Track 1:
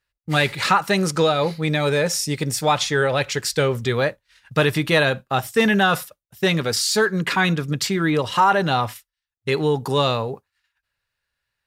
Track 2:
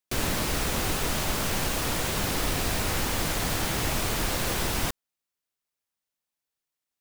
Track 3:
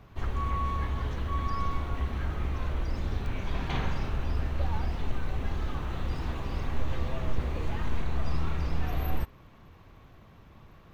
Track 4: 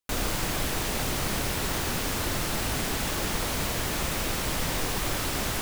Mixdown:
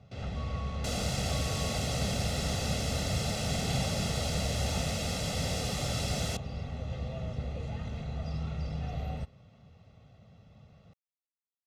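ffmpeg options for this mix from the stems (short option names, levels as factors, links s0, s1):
-filter_complex "[1:a]lowpass=3000,volume=0.316[s0];[2:a]volume=0.944[s1];[3:a]adelay=750,volume=1[s2];[s0][s1][s2]amix=inputs=3:normalize=0,highpass=110,lowpass=6000,equalizer=f=1400:t=o:w=2:g=-13,aecho=1:1:1.5:0.79"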